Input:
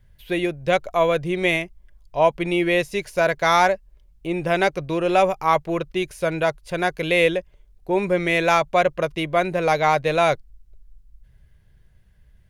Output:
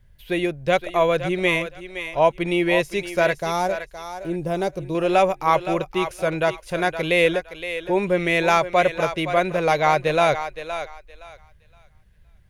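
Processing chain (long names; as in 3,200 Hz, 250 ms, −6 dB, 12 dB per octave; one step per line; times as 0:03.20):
0:03.41–0:04.95: parametric band 2,000 Hz −14.5 dB 2.2 octaves
feedback echo with a high-pass in the loop 517 ms, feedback 23%, high-pass 520 Hz, level −9 dB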